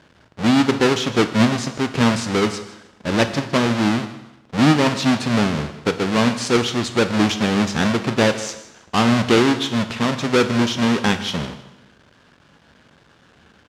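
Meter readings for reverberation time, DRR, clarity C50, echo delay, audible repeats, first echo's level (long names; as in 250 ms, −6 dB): 0.95 s, 8.5 dB, 11.0 dB, 157 ms, 2, −17.5 dB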